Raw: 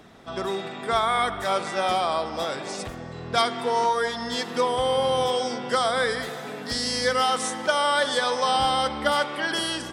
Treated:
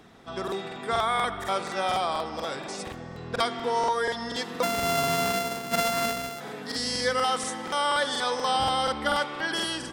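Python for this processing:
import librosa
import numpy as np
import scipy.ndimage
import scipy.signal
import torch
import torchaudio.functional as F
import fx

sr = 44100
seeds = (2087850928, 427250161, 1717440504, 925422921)

y = fx.sample_sort(x, sr, block=64, at=(4.62, 6.39), fade=0.02)
y = fx.notch(y, sr, hz=610.0, q=12.0)
y = fx.buffer_crackle(y, sr, first_s=0.43, period_s=0.24, block=2048, kind='repeat')
y = y * 10.0 ** (-2.5 / 20.0)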